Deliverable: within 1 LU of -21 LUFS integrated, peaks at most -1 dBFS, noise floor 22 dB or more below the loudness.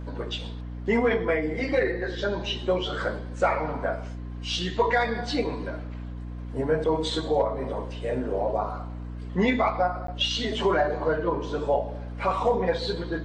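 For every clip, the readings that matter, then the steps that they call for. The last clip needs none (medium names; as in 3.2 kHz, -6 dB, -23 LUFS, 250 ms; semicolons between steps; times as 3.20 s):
dropouts 1; longest dropout 13 ms; hum 60 Hz; highest harmonic 300 Hz; hum level -33 dBFS; loudness -27.0 LUFS; peak level -11.0 dBFS; loudness target -21.0 LUFS
-> interpolate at 10.07 s, 13 ms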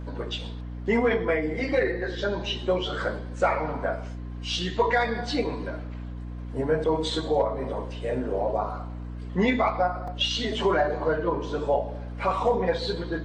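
dropouts 0; hum 60 Hz; highest harmonic 300 Hz; hum level -33 dBFS
-> de-hum 60 Hz, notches 5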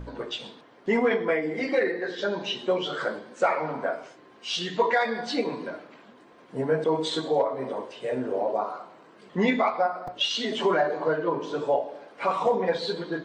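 hum not found; loudness -27.0 LUFS; peak level -10.5 dBFS; loudness target -21.0 LUFS
-> trim +6 dB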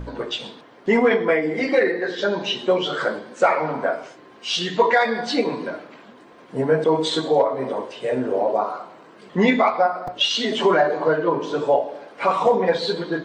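loudness -21.0 LUFS; peak level -4.5 dBFS; noise floor -47 dBFS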